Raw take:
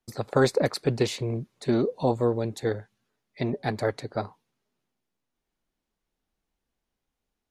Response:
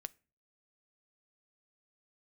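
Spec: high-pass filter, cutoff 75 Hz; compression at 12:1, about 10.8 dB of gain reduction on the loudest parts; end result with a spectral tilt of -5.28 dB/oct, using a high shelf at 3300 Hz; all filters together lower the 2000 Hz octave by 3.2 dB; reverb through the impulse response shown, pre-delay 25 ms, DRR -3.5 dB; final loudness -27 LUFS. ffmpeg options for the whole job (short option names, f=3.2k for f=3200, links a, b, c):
-filter_complex "[0:a]highpass=75,equalizer=f=2k:t=o:g=-6.5,highshelf=f=3.3k:g=7.5,acompressor=threshold=-27dB:ratio=12,asplit=2[a][b];[1:a]atrim=start_sample=2205,adelay=25[c];[b][c]afir=irnorm=-1:irlink=0,volume=7.5dB[d];[a][d]amix=inputs=2:normalize=0,volume=1.5dB"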